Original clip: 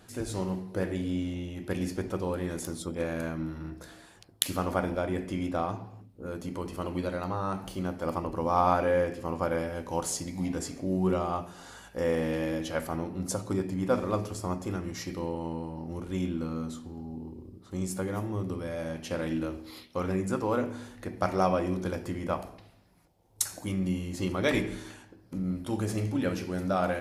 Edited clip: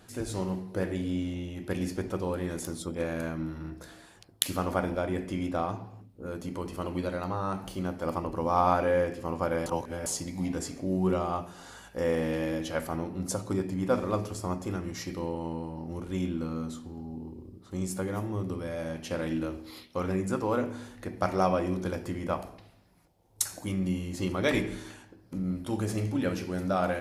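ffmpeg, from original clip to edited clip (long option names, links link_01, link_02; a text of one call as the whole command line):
ffmpeg -i in.wav -filter_complex "[0:a]asplit=3[link_01][link_02][link_03];[link_01]atrim=end=9.662[link_04];[link_02]atrim=start=9.658:end=10.062,asetpts=PTS-STARTPTS,areverse[link_05];[link_03]atrim=start=10.058[link_06];[link_04][link_05]acrossfade=duration=0.004:curve1=hsin:curve2=hsin[link_07];[link_07][link_06]acrossfade=duration=0.004:curve1=hsin:curve2=hsin" out.wav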